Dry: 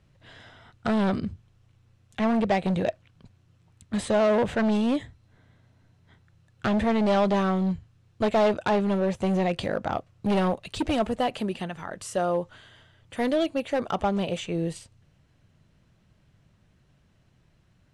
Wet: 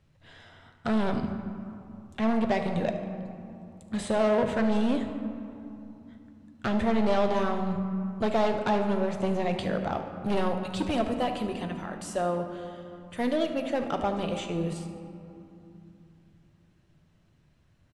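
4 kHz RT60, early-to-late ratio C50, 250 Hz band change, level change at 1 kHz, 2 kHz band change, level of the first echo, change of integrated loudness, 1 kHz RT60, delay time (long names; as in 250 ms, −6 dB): 1.3 s, 6.5 dB, −2.0 dB, −2.0 dB, −2.5 dB, −14.5 dB, −3.0 dB, 2.9 s, 74 ms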